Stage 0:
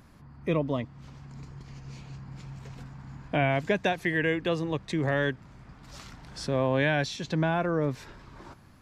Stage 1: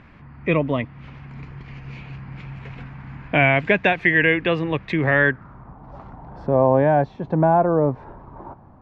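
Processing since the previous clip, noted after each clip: low-pass sweep 2.4 kHz -> 840 Hz, 5.06–5.78 s; trim +6.5 dB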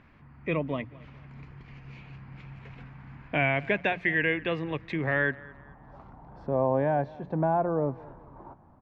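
hum notches 60/120/180 Hz; feedback delay 218 ms, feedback 37%, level -21.5 dB; trim -9 dB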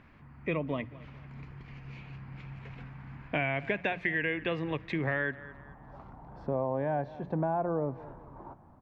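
compression 4:1, threshold -27 dBFS, peak gain reduction 6.5 dB; reverberation RT60 0.25 s, pre-delay 46 ms, DRR 24 dB

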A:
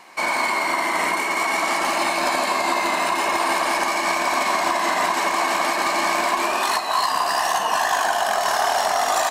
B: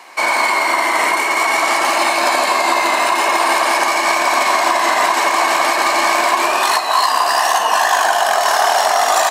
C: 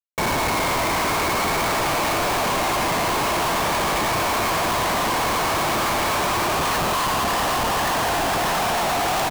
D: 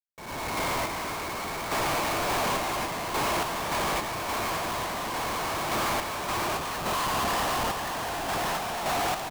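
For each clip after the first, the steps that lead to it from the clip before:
high-pass 340 Hz 12 dB/octave; trim +6.5 dB
frequency-shifting echo 233 ms, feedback 60%, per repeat +85 Hz, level -7 dB; Schmitt trigger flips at -15.5 dBFS; trim -7 dB
fade-in on the opening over 0.56 s; random-step tremolo; trim -5 dB

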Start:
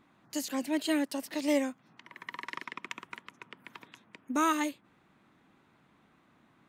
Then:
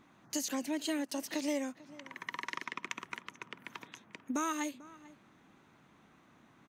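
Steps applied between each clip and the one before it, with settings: compression 3:1, threshold -36 dBFS, peak gain reduction 10 dB; peaking EQ 6.2 kHz +8.5 dB 0.25 oct; echo from a far wall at 76 m, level -19 dB; trim +2 dB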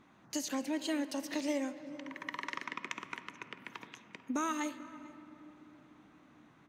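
treble shelf 7.9 kHz -7.5 dB; on a send at -11.5 dB: reverberation RT60 3.5 s, pre-delay 5 ms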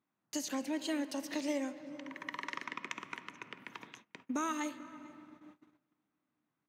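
gate -54 dBFS, range -23 dB; high-pass 82 Hz; trim -1 dB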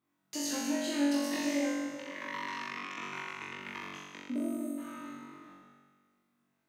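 time-frequency box 4.35–4.78 s, 740–7600 Hz -27 dB; peak limiter -29.5 dBFS, peak gain reduction 10 dB; on a send: flutter echo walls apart 3.6 m, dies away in 1.4 s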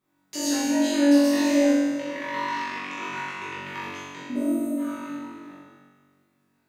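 simulated room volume 72 m³, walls mixed, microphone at 1.1 m; trim +3 dB

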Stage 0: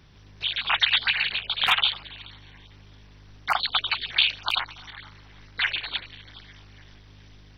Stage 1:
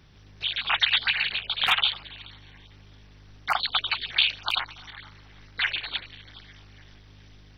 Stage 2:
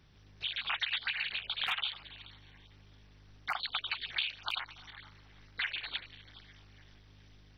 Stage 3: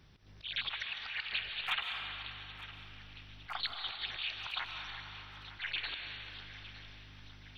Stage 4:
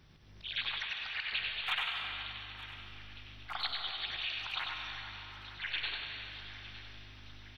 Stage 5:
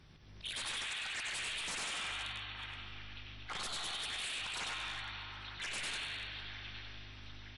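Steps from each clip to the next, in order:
band-stop 1 kHz, Q 24; trim -1 dB
dynamic bell 2 kHz, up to +4 dB, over -34 dBFS, Q 0.79; compression 2.5:1, threshold -26 dBFS, peak gain reduction 8.5 dB; trim -7.5 dB
slow attack 132 ms; thinning echo 909 ms, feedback 60%, level -15 dB; algorithmic reverb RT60 2.9 s, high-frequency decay 0.65×, pre-delay 110 ms, DRR 3.5 dB; trim +1.5 dB
multi-tap echo 95/109 ms -5/-8.5 dB
wavefolder -36 dBFS; trim +1.5 dB; MP3 48 kbps 24 kHz

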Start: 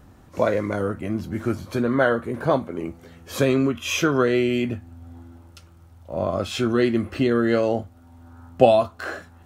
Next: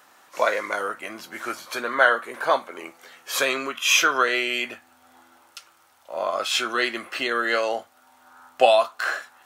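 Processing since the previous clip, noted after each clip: high-pass 1 kHz 12 dB/octave; trim +7.5 dB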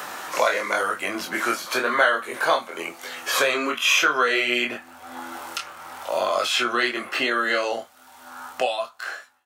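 fade out at the end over 3.13 s; chorus 0.96 Hz, delay 20 ms, depth 5.6 ms; three bands compressed up and down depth 70%; trim +6.5 dB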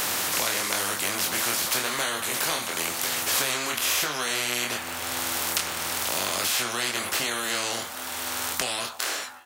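spectrum-flattening compressor 4:1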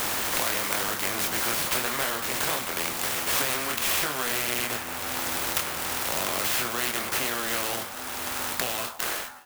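sampling jitter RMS 0.053 ms

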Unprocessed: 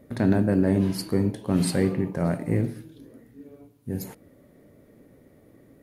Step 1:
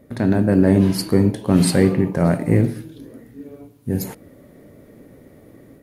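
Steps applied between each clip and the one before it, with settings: level rider gain up to 6 dB; trim +2.5 dB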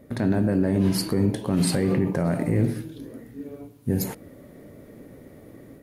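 peak limiter -13 dBFS, peak gain reduction 11 dB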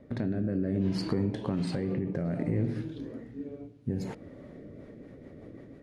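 compression, threshold -24 dBFS, peak gain reduction 7.5 dB; rotary cabinet horn 0.6 Hz, later 6 Hz, at 4.30 s; distance through air 120 m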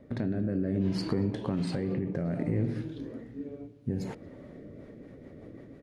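speakerphone echo 230 ms, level -21 dB

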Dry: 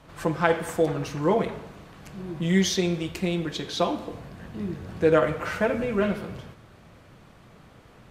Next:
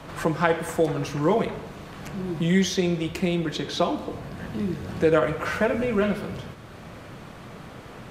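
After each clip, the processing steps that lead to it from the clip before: three bands compressed up and down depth 40%; trim +1.5 dB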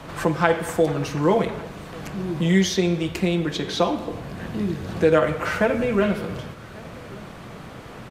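delay 1145 ms -23.5 dB; trim +2.5 dB

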